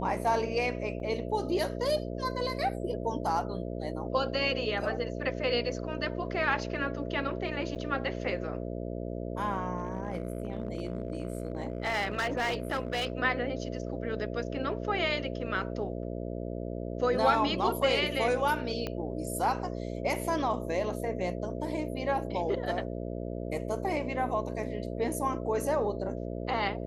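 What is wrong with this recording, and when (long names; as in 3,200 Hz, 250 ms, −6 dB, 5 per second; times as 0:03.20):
mains buzz 60 Hz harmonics 11 −36 dBFS
0:01.00: drop-out 3 ms
0:07.75–0:07.76: drop-out 7.9 ms
0:09.78–0:13.12: clipping −26.5 dBFS
0:18.87: click −20 dBFS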